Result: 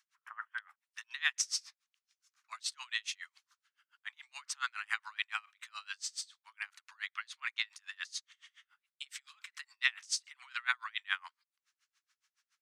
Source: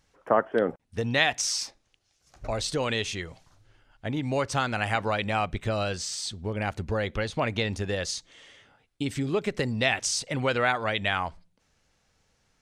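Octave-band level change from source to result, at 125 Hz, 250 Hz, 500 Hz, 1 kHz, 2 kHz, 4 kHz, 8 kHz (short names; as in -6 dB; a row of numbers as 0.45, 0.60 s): under -40 dB, under -40 dB, under -40 dB, -16.0 dB, -7.0 dB, -7.5 dB, -7.5 dB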